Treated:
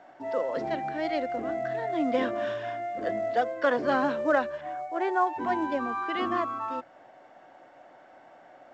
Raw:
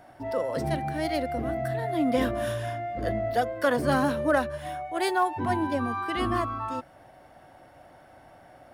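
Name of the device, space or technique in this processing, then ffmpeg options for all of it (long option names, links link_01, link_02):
telephone: -filter_complex "[0:a]asettb=1/sr,asplit=3[link_01][link_02][link_03];[link_01]atrim=end=4.614[link_04];[link_02]atrim=start=4.61:end=5.27,asetpts=PTS-STARTPTS,afade=type=in:duration=0.004:curve=qsin,afade=type=out:start_time=0.656:duration=0.004:curve=qsin,lowpass=1800[link_05];[link_03]atrim=start=5.266[link_06];[link_04][link_05]acrossfade=duration=0.004:curve1=hsin:curve2=qsin[link_07];[link_07][link_06]acrossfade=duration=0.004:curve1=qsin:curve2=hsin,highpass=280,lowpass=3300,equalizer=frequency=69:width=4:gain=4,bandreject=frequency=50:width_type=h:width=6,bandreject=frequency=100:width_type=h:width=6,bandreject=frequency=150:width_type=h:width=6" -ar 16000 -c:a pcm_mulaw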